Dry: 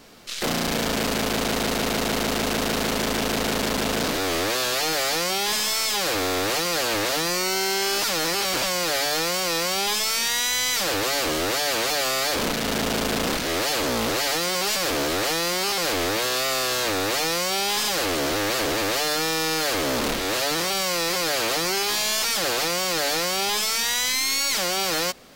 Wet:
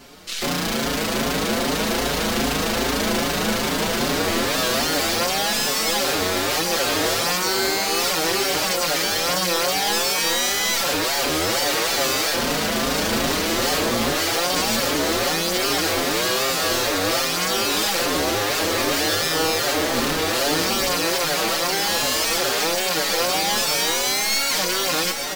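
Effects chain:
gain into a clipping stage and back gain 25 dB
delay that swaps between a low-pass and a high-pass 717 ms, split 1,600 Hz, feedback 73%, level −4 dB
barber-pole flanger 5.4 ms +2.5 Hz
level +7 dB

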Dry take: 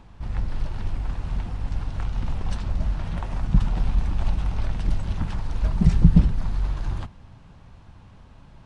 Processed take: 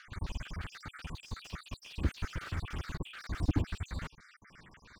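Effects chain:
time-frequency cells dropped at random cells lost 64%
three-way crossover with the lows and the highs turned down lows −17 dB, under 580 Hz, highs −19 dB, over 3,900 Hz
wrong playback speed 45 rpm record played at 78 rpm
dynamic equaliser 1,900 Hz, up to −5 dB, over −58 dBFS, Q 1.3
slew-rate limiting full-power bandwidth 8.2 Hz
level +5.5 dB

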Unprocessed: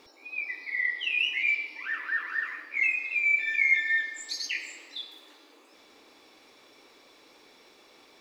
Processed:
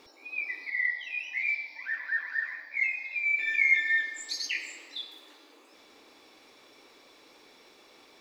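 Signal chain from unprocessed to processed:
0:00.70–0:03.39: phaser with its sweep stopped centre 1,900 Hz, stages 8

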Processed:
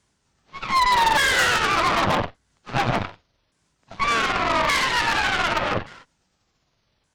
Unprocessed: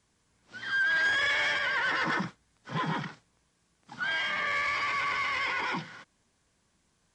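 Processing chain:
pitch shifter swept by a sawtooth −11 semitones, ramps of 1,173 ms
harmonic generator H 4 −9 dB, 7 −24 dB, 8 −24 dB, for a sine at −22 dBFS
level +8.5 dB

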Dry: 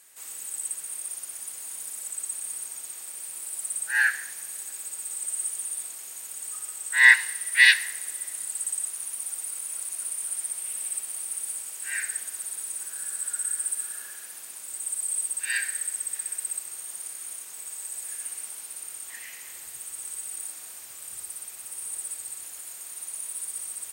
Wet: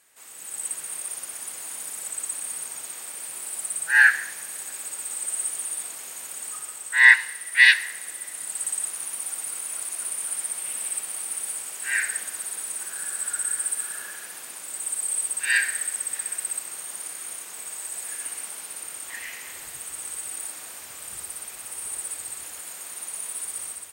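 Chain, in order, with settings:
high-shelf EQ 4,200 Hz −8.5 dB
automatic gain control gain up to 9 dB

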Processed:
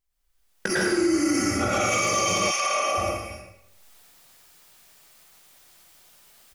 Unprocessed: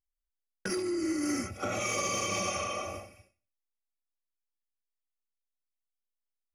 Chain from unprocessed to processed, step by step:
camcorder AGC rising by 31 dB per second
double-tracking delay 18 ms −13.5 dB
convolution reverb RT60 0.80 s, pre-delay 98 ms, DRR −3 dB
brickwall limiter −21 dBFS, peak gain reduction 9.5 dB
0:02.50–0:02.97: high-pass filter 1,000 Hz → 350 Hz 12 dB per octave
level +7 dB

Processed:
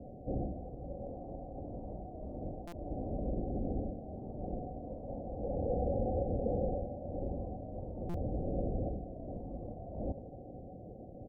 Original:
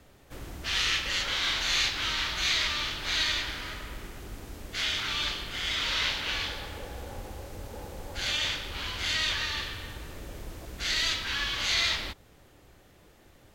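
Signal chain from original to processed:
low-shelf EQ 88 Hz −5.5 dB
reversed playback
downward compressor 5 to 1, threshold −38 dBFS, peak gain reduction 13.5 dB
reversed playback
tempo change 1.2×
Chebyshev low-pass with heavy ripple 770 Hz, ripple 6 dB
feedback echo with a high-pass in the loop 79 ms, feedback 64%, high-pass 410 Hz, level −10 dB
on a send at −17 dB: convolution reverb RT60 3.5 s, pre-delay 3 ms
on the sum: buffer that repeats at 0:02.67/0:08.09, samples 256, times 8
level +14.5 dB

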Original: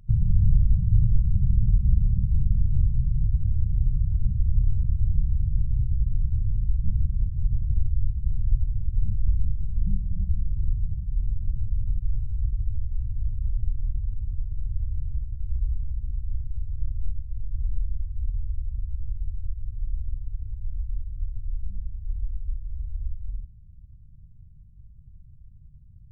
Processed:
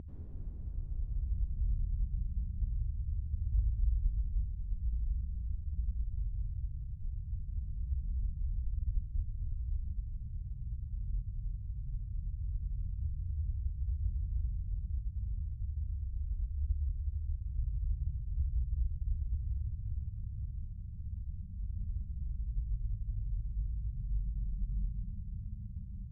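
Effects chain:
extreme stretch with random phases 18×, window 0.10 s, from 0:22.04
resonant band-pass 250 Hz, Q 1.2
convolution reverb RT60 5.8 s, pre-delay 83 ms, DRR −6 dB
level +3 dB

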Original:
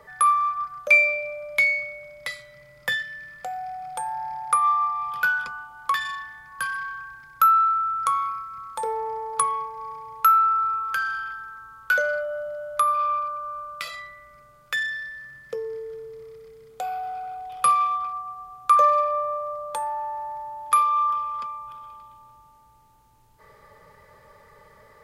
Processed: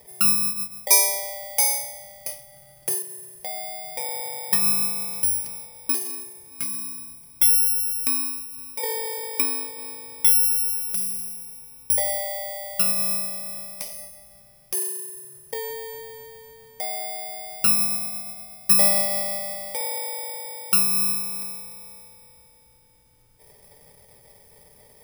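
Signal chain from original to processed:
samples in bit-reversed order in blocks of 32 samples

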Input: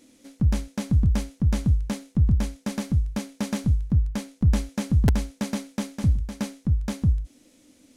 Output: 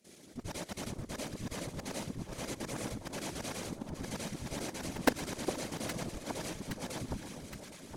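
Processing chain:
every overlapping window played backwards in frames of 231 ms
high-pass filter 350 Hz 12 dB per octave
output level in coarse steps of 16 dB
delay that swaps between a low-pass and a high-pass 409 ms, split 1,200 Hz, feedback 77%, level −6.5 dB
random phases in short frames
level +8.5 dB

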